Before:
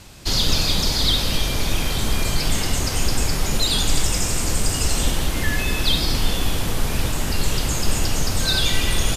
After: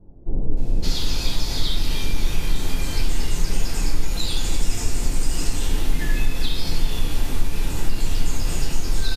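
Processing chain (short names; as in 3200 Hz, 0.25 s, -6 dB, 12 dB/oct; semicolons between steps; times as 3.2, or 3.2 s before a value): bands offset in time lows, highs 0.57 s, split 640 Hz; compressor, threshold -18 dBFS, peak gain reduction 7.5 dB; shoebox room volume 40 m³, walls mixed, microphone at 0.86 m; gain -8.5 dB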